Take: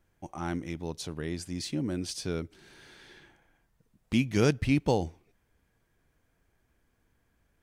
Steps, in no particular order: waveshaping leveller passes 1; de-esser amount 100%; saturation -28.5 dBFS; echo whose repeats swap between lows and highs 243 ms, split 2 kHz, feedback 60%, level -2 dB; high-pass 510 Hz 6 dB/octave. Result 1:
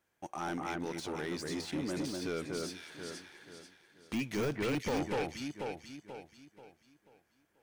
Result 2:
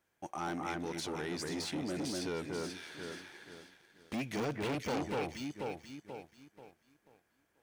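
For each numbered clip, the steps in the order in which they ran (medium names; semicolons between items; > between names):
high-pass > waveshaping leveller > echo whose repeats swap between lows and highs > saturation > de-esser; de-esser > echo whose repeats swap between lows and highs > saturation > high-pass > waveshaping leveller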